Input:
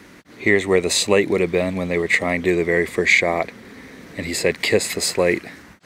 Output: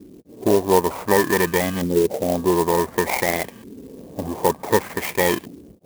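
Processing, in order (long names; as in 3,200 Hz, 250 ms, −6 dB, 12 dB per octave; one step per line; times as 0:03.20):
samples in bit-reversed order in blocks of 32 samples
auto-filter low-pass saw up 0.55 Hz 320–3,600 Hz
converter with an unsteady clock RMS 0.054 ms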